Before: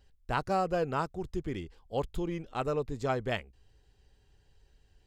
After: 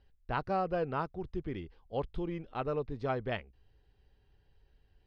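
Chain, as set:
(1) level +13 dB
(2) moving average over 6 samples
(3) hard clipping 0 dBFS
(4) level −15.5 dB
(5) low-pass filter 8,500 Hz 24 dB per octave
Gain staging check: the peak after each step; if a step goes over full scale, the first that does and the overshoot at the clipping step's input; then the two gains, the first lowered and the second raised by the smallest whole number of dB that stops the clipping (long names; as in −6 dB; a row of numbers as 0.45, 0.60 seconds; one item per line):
−2.5, −3.0, −3.0, −18.5, −18.5 dBFS
no step passes full scale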